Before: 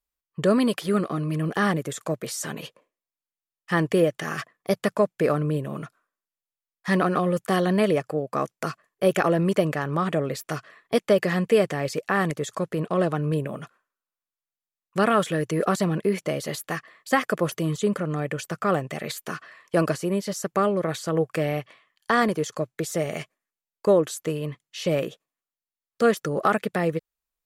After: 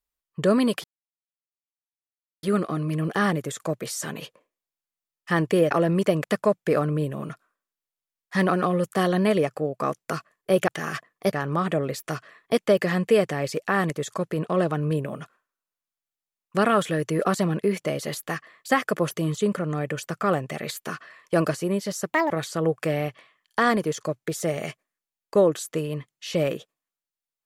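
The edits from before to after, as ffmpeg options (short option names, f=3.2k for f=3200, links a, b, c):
-filter_complex "[0:a]asplit=8[a][b][c][d][e][f][g][h];[a]atrim=end=0.84,asetpts=PTS-STARTPTS,afade=t=out:st=0.836:d=0.004:c=hsin,apad=pad_dur=1.59[i];[b]atrim=start=0.84:end=4.122,asetpts=PTS-STARTPTS,afade=t=in:d=0.004:c=hsin[j];[c]atrim=start=9.208:end=9.742[k];[d]atrim=start=4.768:end=9.212[l];[e]atrim=start=4.118:end=4.772[m];[f]atrim=start=9.738:end=20.544[n];[g]atrim=start=20.54:end=20.82,asetpts=PTS-STARTPTS,asetrate=71001,aresample=44100[o];[h]atrim=start=20.816[p];[i][j]concat=n=2:v=0:a=1[q];[q][k]acrossfade=d=0.004:c1=hsin:c2=hsin[r];[r][l]acrossfade=d=0.004:c1=hsin:c2=hsin[s];[s][m]acrossfade=d=0.004:c1=hsin:c2=hsin[t];[t][n]acrossfade=d=0.004:c1=hsin:c2=hsin[u];[u][o]acrossfade=d=0.004:c1=hsin:c2=hsin[v];[v][p]acrossfade=d=0.004:c1=hsin:c2=hsin"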